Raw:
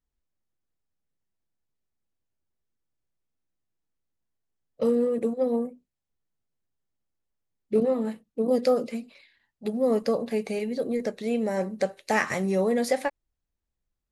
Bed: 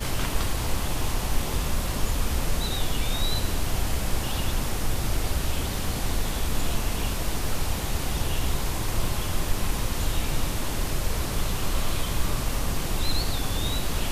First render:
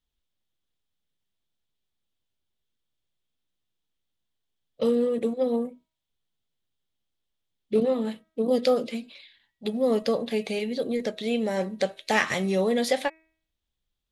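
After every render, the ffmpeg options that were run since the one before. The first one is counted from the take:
ffmpeg -i in.wav -af "equalizer=frequency=3400:width=2.1:gain=13.5,bandreject=frequency=319.7:width_type=h:width=4,bandreject=frequency=639.4:width_type=h:width=4,bandreject=frequency=959.1:width_type=h:width=4,bandreject=frequency=1278.8:width_type=h:width=4,bandreject=frequency=1598.5:width_type=h:width=4,bandreject=frequency=1918.2:width_type=h:width=4,bandreject=frequency=2237.9:width_type=h:width=4,bandreject=frequency=2557.6:width_type=h:width=4" out.wav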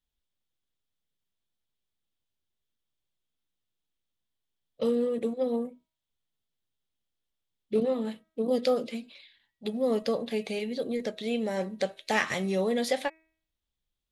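ffmpeg -i in.wav -af "volume=-3.5dB" out.wav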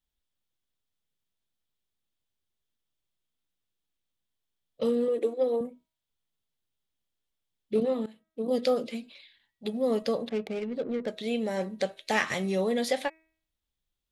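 ffmpeg -i in.wav -filter_complex "[0:a]asettb=1/sr,asplit=3[link_01][link_02][link_03];[link_01]atrim=end=5.084[link_04];[link_02]atrim=start=5.08:end=5.61,asetpts=PTS-STARTPTS,afade=type=in:duration=0.004:curve=qsin,afade=type=out:start_time=0.526:duration=0.004:curve=qsin,lowshelf=frequency=250:width_type=q:width=3:gain=-10[link_05];[link_03]atrim=start=5.606[link_06];[link_04][link_05]acrossfade=duration=0.004:curve1=hsin:curve2=qsin[link_07];[link_07][link_06]acrossfade=duration=0.004:curve1=qsin:curve2=hsin,asettb=1/sr,asplit=3[link_08][link_09][link_10];[link_08]atrim=end=10.294[link_11];[link_09]atrim=start=10.29:end=11.08,asetpts=PTS-STARTPTS,afade=type=in:duration=0.004:curve=qsin,afade=type=out:start_time=0.786:duration=0.004:curve=qsin,adynamicsmooth=sensitivity=4.5:basefreq=660[link_12];[link_10]atrim=start=11.076[link_13];[link_11][link_12]acrossfade=duration=0.004:curve1=hsin:curve2=qsin[link_14];[link_14][link_13]acrossfade=duration=0.004:curve1=qsin:curve2=hsin,asplit=2[link_15][link_16];[link_15]atrim=end=8.06,asetpts=PTS-STARTPTS,afade=type=out:start_time=8.056:duration=0.004:curve=hsin:silence=0.125893[link_17];[link_16]atrim=start=8.06,asetpts=PTS-STARTPTS,afade=type=in:duration=0.52:silence=0.125893[link_18];[link_17][link_18]concat=n=2:v=0:a=1" out.wav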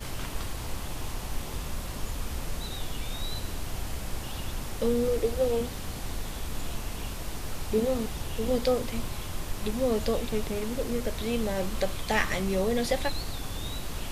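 ffmpeg -i in.wav -i bed.wav -filter_complex "[1:a]volume=-8dB[link_01];[0:a][link_01]amix=inputs=2:normalize=0" out.wav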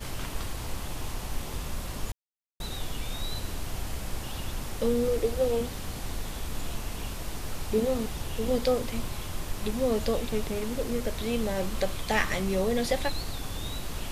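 ffmpeg -i in.wav -filter_complex "[0:a]asplit=3[link_01][link_02][link_03];[link_01]atrim=end=2.12,asetpts=PTS-STARTPTS,afade=type=out:start_time=2.116:duration=0.004:curve=hsin[link_04];[link_02]atrim=start=2.12:end=2.6,asetpts=PTS-STARTPTS,volume=0[link_05];[link_03]atrim=start=2.6,asetpts=PTS-STARTPTS,afade=type=in:duration=0.004:curve=hsin[link_06];[link_04][link_05][link_06]concat=n=3:v=0:a=1" out.wav

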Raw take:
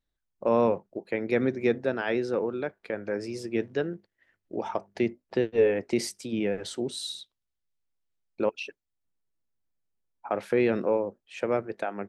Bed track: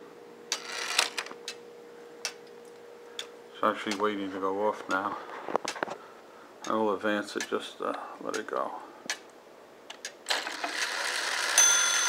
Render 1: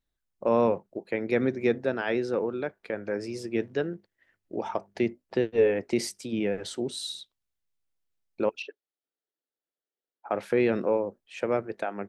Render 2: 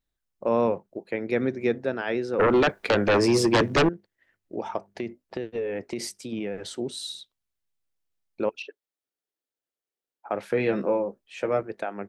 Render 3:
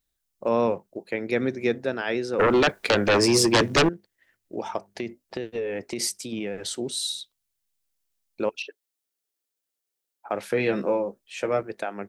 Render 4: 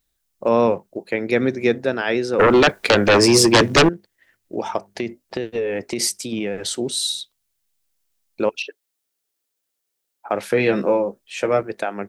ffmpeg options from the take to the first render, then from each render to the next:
ffmpeg -i in.wav -filter_complex "[0:a]asettb=1/sr,asplit=3[link_01][link_02][link_03];[link_01]atrim=end=8.624[link_04];[link_02]atrim=start=8.62:end=10.3,asetpts=PTS-STARTPTS,afade=type=in:duration=0.004:curve=qsin,afade=type=out:start_time=1.676:duration=0.004:curve=qsin,highpass=frequency=310:width=0.5412,highpass=frequency=310:width=1.3066,equalizer=frequency=450:width_type=q:width=4:gain=3,equalizer=frequency=1000:width_type=q:width=4:gain=-10,equalizer=frequency=2400:width_type=q:width=4:gain=-10,lowpass=frequency=4200:width=0.5412,lowpass=frequency=4200:width=1.3066[link_05];[link_03]atrim=start=10.296[link_06];[link_04][link_05]acrossfade=duration=0.004:curve1=hsin:curve2=qsin[link_07];[link_07][link_06]acrossfade=duration=0.004:curve1=qsin:curve2=hsin" out.wav
ffmpeg -i in.wav -filter_complex "[0:a]asettb=1/sr,asplit=3[link_01][link_02][link_03];[link_01]atrim=end=2.394[link_04];[link_02]atrim=start=2.39:end=3.89,asetpts=PTS-STARTPTS,afade=type=in:duration=0.004:curve=qsin,afade=type=out:start_time=1.496:duration=0.004:curve=qsin,aeval=exprs='0.178*sin(PI/2*4.47*val(0)/0.178)':channel_layout=same[link_05];[link_03]atrim=start=3.886[link_06];[link_04][link_05]acrossfade=duration=0.004:curve1=hsin:curve2=qsin[link_07];[link_07][link_06]acrossfade=duration=0.004:curve1=qsin:curve2=hsin,asettb=1/sr,asplit=3[link_08][link_09][link_10];[link_08]atrim=end=4.934[link_11];[link_09]atrim=start=4.93:end=6.65,asetpts=PTS-STARTPTS,afade=type=in:duration=0.004:curve=qsin,afade=type=out:start_time=1.716:duration=0.004:curve=qsin,acompressor=threshold=-26dB:ratio=6:attack=3.2:release=140:knee=1:detection=peak[link_12];[link_10]atrim=start=6.646[link_13];[link_11][link_12]acrossfade=duration=0.004:curve1=hsin:curve2=qsin[link_14];[link_14][link_13]acrossfade=duration=0.004:curve1=qsin:curve2=hsin,asettb=1/sr,asplit=3[link_15][link_16][link_17];[link_15]atrim=end=10.514[link_18];[link_16]atrim=start=10.51:end=11.63,asetpts=PTS-STARTPTS,afade=type=in:duration=0.004:curve=qsin,afade=type=out:start_time=1.116:duration=0.004:curve=qsin,asplit=2[link_19][link_20];[link_20]adelay=15,volume=-5dB[link_21];[link_19][link_21]amix=inputs=2:normalize=0,atrim=end_sample=49392[link_22];[link_17]atrim=start=11.626[link_23];[link_18][link_22]acrossfade=duration=0.004:curve1=hsin:curve2=qsin[link_24];[link_24][link_23]acrossfade=duration=0.004:curve1=qsin:curve2=hsin" out.wav
ffmpeg -i in.wav -af "highshelf=frequency=3600:gain=10.5" out.wav
ffmpeg -i in.wav -af "volume=6dB" out.wav

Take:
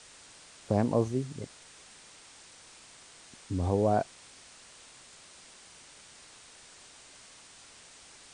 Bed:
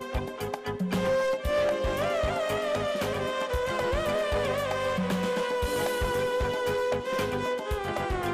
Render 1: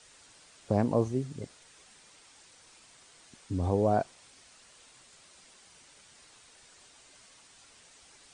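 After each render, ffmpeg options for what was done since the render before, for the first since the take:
ffmpeg -i in.wav -af "afftdn=noise_reduction=6:noise_floor=-54" out.wav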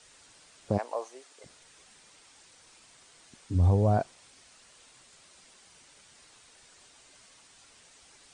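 ffmpeg -i in.wav -filter_complex "[0:a]asplit=3[link_01][link_02][link_03];[link_01]afade=type=out:start_time=0.77:duration=0.02[link_04];[link_02]highpass=frequency=600:width=0.5412,highpass=frequency=600:width=1.3066,afade=type=in:start_time=0.77:duration=0.02,afade=type=out:start_time=1.44:duration=0.02[link_05];[link_03]afade=type=in:start_time=1.44:duration=0.02[link_06];[link_04][link_05][link_06]amix=inputs=3:normalize=0,asplit=3[link_07][link_08][link_09];[link_07]afade=type=out:start_time=3.54:duration=0.02[link_10];[link_08]asubboost=boost=5:cutoff=140,afade=type=in:start_time=3.54:duration=0.02,afade=type=out:start_time=3.97:duration=0.02[link_11];[link_09]afade=type=in:start_time=3.97:duration=0.02[link_12];[link_10][link_11][link_12]amix=inputs=3:normalize=0" out.wav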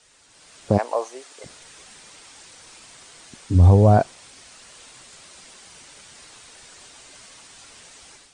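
ffmpeg -i in.wav -af "dynaudnorm=framelen=280:gausssize=3:maxgain=11dB" out.wav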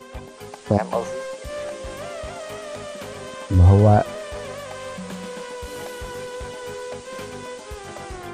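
ffmpeg -i in.wav -i bed.wav -filter_complex "[1:a]volume=-5.5dB[link_01];[0:a][link_01]amix=inputs=2:normalize=0" out.wav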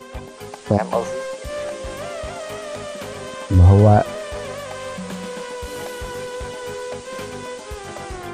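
ffmpeg -i in.wav -af "volume=3dB,alimiter=limit=-3dB:level=0:latency=1" out.wav

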